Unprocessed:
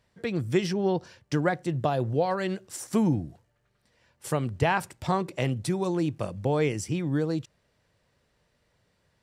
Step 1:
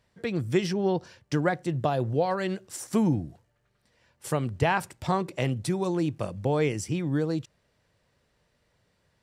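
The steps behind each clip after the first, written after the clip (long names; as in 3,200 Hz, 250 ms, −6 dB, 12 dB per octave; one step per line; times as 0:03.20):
no processing that can be heard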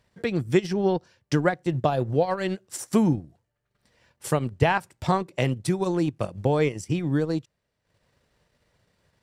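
transient designer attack +2 dB, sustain −11 dB
level +2.5 dB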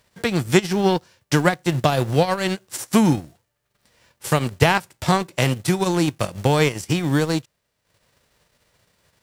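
spectral envelope flattened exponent 0.6
level +4.5 dB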